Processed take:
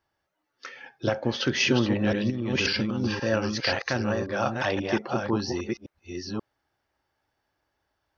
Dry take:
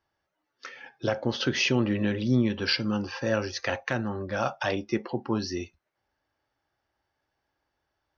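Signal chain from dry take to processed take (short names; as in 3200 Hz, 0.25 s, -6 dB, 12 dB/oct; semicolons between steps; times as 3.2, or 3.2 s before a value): reverse delay 0.533 s, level -4 dB; 2.3–3.15 negative-ratio compressor -28 dBFS, ratio -1; gain +1 dB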